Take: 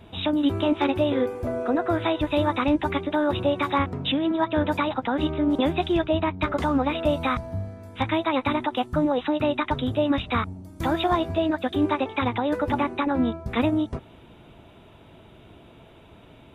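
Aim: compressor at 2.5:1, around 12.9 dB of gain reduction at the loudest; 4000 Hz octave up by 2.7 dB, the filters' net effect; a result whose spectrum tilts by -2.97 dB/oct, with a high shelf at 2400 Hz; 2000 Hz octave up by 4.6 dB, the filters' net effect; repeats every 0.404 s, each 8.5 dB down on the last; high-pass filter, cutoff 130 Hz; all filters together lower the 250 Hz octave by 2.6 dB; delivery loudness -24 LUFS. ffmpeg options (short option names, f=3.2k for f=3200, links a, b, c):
-af "highpass=130,equalizer=f=250:t=o:g=-3,equalizer=f=2k:t=o:g=7.5,highshelf=f=2.4k:g=-5.5,equalizer=f=4k:t=o:g=5,acompressor=threshold=-39dB:ratio=2.5,aecho=1:1:404|808|1212|1616:0.376|0.143|0.0543|0.0206,volume=12.5dB"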